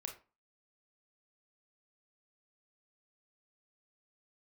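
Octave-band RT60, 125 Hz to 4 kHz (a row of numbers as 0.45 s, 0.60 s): 0.30 s, 0.35 s, 0.30 s, 0.35 s, 0.30 s, 0.20 s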